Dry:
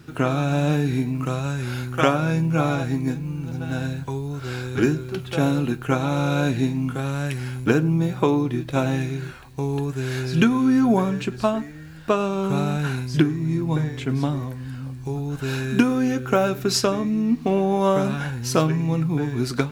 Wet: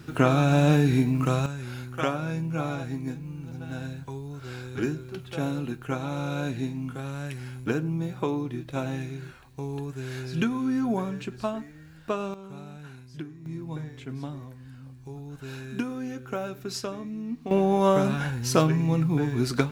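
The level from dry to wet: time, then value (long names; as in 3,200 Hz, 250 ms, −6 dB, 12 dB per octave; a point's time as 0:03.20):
+1 dB
from 0:01.46 −8.5 dB
from 0:12.34 −19.5 dB
from 0:13.46 −12.5 dB
from 0:17.51 −1.5 dB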